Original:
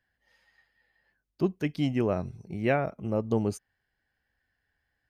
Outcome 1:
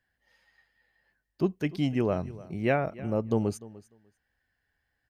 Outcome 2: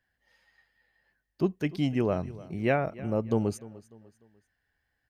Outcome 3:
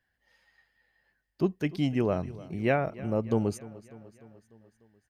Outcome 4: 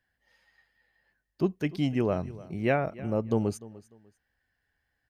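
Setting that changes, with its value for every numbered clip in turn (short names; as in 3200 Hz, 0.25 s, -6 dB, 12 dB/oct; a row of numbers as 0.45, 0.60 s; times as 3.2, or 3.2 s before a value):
feedback echo, feedback: 15, 39, 61, 26%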